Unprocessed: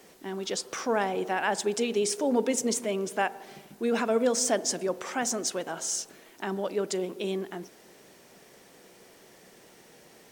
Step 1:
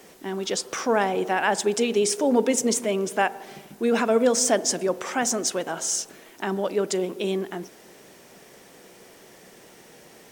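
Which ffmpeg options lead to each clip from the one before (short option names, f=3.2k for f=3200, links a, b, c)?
-af "equalizer=f=4.3k:t=o:w=0.3:g=-2,volume=5dB"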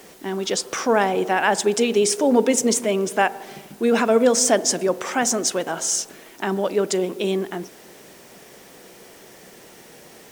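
-af "acrusher=bits=8:mix=0:aa=0.000001,volume=3.5dB"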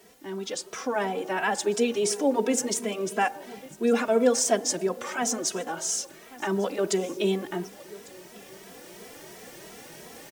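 -filter_complex "[0:a]aecho=1:1:1149:0.0708,dynaudnorm=f=760:g=3:m=10.5dB,asplit=2[a][b];[b]adelay=2.7,afreqshift=2.9[c];[a][c]amix=inputs=2:normalize=1,volume=-7dB"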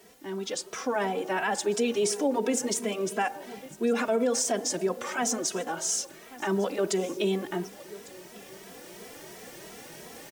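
-af "alimiter=limit=-17.5dB:level=0:latency=1:release=53"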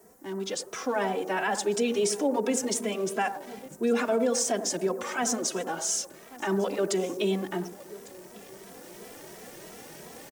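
-filter_complex "[0:a]acrossover=split=110|1700|5700[a][b][c][d];[b]aecho=1:1:93:0.299[e];[c]aeval=exprs='val(0)*gte(abs(val(0)),0.00224)':c=same[f];[a][e][f][d]amix=inputs=4:normalize=0"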